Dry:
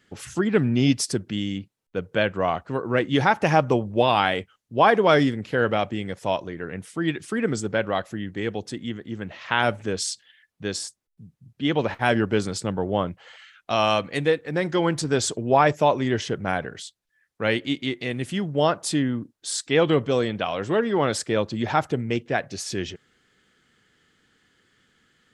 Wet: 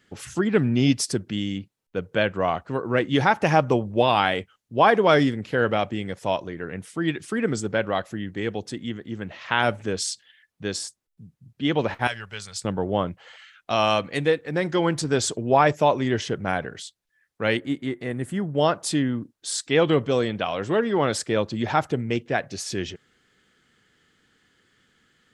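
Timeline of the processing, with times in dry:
12.07–12.65 passive tone stack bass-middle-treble 10-0-10
17.57–18.55 band shelf 3800 Hz -11.5 dB

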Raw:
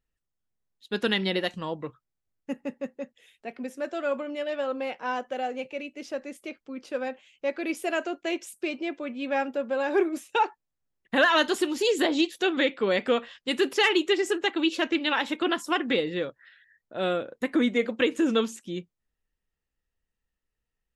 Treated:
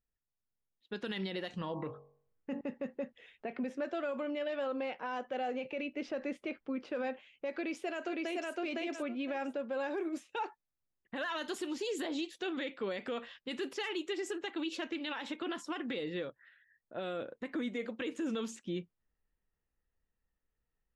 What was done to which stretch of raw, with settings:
1.48–2.61 de-hum 47.22 Hz, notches 25
7.53–8.51 echo throw 0.51 s, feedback 15%, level -2 dB
whole clip: low-pass opened by the level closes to 1900 Hz, open at -20 dBFS; vocal rider 0.5 s; limiter -23.5 dBFS; gain -5.5 dB

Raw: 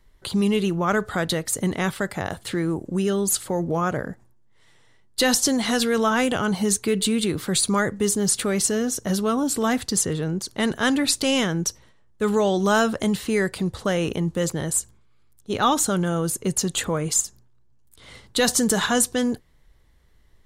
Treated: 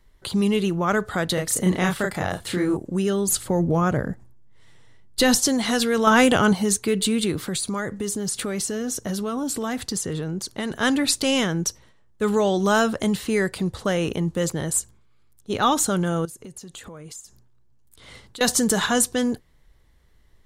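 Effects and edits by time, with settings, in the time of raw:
1.34–2.77 doubler 33 ms -2 dB
3.28–5.4 low shelf 220 Hz +9 dB
6.07–6.53 gain +5.5 dB
7.48–10.73 compressor 5:1, threshold -23 dBFS
16.25–18.41 compressor 8:1, threshold -37 dBFS

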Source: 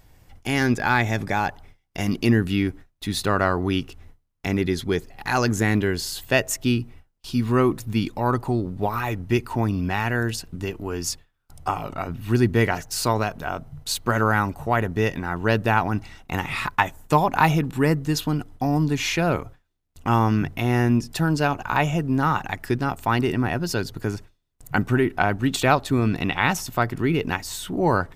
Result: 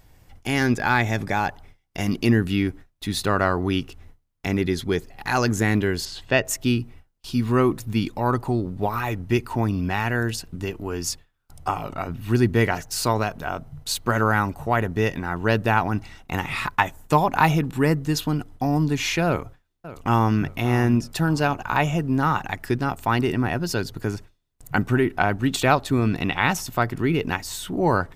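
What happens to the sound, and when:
6.05–6.45 LPF 4400 Hz
19.26–20.39 echo throw 0.58 s, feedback 35%, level -15.5 dB

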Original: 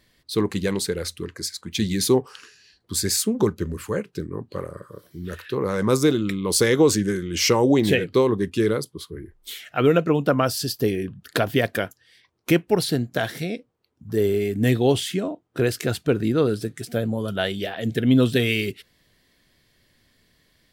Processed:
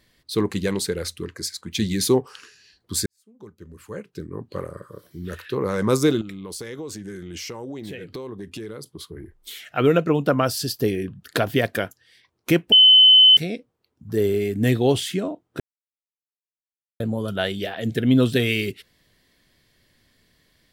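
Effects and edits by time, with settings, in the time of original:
3.06–4.52 fade in quadratic
6.21–9.65 compressor, threshold -32 dBFS
12.72–13.37 bleep 3040 Hz -8 dBFS
15.6–17 mute

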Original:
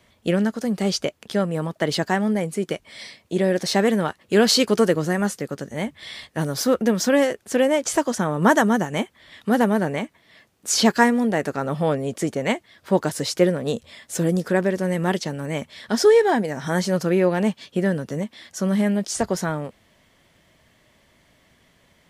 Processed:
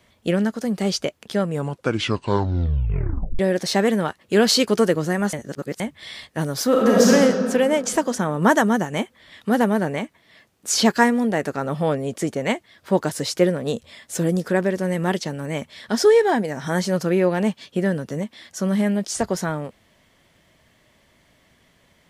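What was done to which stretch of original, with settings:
1.44 tape stop 1.95 s
5.33–5.8 reverse
6.69–7.1 reverb throw, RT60 2.3 s, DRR -5.5 dB

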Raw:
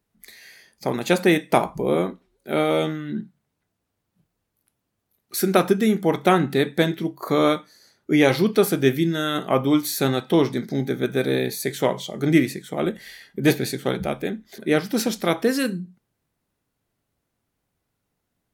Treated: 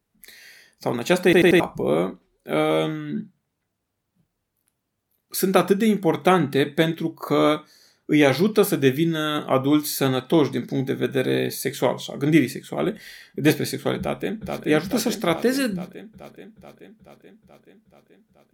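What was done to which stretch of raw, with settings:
1.24 stutter in place 0.09 s, 4 plays
13.98–14.64 echo throw 0.43 s, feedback 70%, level -3.5 dB

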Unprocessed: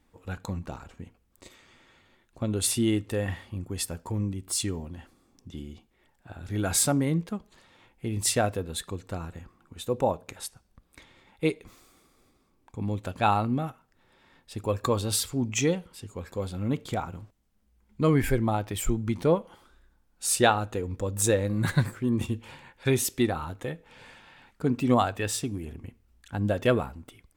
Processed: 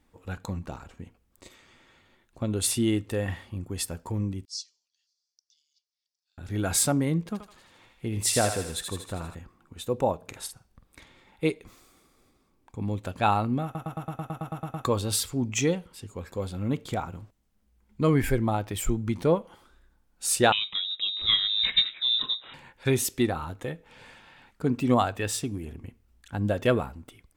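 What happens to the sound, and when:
4.45–6.38 Butterworth band-pass 5200 Hz, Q 3.1
7.18–9.35 thinning echo 79 ms, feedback 65%, high-pass 1100 Hz, level -4 dB
10.17–11.48 doubler 48 ms -8 dB
13.64 stutter in place 0.11 s, 11 plays
20.52–22.54 inverted band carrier 3800 Hz

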